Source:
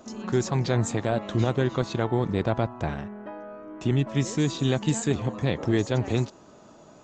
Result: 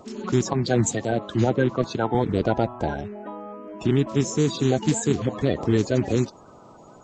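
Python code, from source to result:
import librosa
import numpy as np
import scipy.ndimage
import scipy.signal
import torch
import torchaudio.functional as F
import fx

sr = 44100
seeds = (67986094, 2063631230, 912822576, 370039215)

y = fx.spec_quant(x, sr, step_db=30)
y = fx.band_widen(y, sr, depth_pct=100, at=(0.53, 2.15))
y = y * 10.0 ** (3.5 / 20.0)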